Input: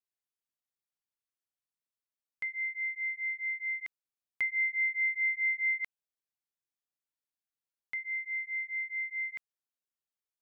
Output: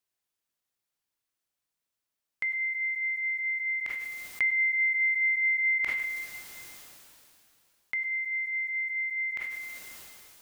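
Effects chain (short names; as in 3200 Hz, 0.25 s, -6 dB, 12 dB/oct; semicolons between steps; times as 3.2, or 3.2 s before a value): two-slope reverb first 0.43 s, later 1.5 s, from -25 dB, DRR 17.5 dB; dynamic EQ 2000 Hz, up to -4 dB, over -42 dBFS, Q 2.4; sustainer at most 22 dB/s; gain +7.5 dB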